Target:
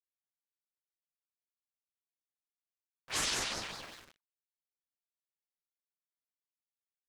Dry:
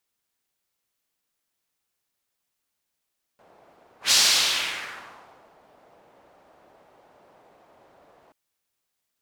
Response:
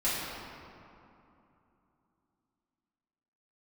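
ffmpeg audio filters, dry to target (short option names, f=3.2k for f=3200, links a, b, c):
-filter_complex "[0:a]asplit=5[a][b][c][d][e];[b]adelay=266,afreqshift=-110,volume=-16dB[f];[c]adelay=532,afreqshift=-220,volume=-23.3dB[g];[d]adelay=798,afreqshift=-330,volume=-30.7dB[h];[e]adelay=1064,afreqshift=-440,volume=-38dB[i];[a][f][g][h][i]amix=inputs=5:normalize=0,aresample=22050,aresample=44100,equalizer=f=300:w=1.4:g=-5.5,asoftclip=type=tanh:threshold=-9dB,asplit=2[j][k];[1:a]atrim=start_sample=2205,afade=t=out:st=0.17:d=0.01,atrim=end_sample=7938[l];[k][l]afir=irnorm=-1:irlink=0,volume=-32.5dB[m];[j][m]amix=inputs=2:normalize=0,aeval=exprs='val(0)*gte(abs(val(0)),0.0075)':c=same,atempo=1.3,highshelf=f=2.2k:g=-8,asplit=2[n][o];[o]acompressor=threshold=-40dB:ratio=6,volume=-2dB[p];[n][p]amix=inputs=2:normalize=0,anlmdn=0.001,aeval=exprs='val(0)*sin(2*PI*1600*n/s+1600*0.85/5.3*sin(2*PI*5.3*n/s))':c=same,volume=-5.5dB"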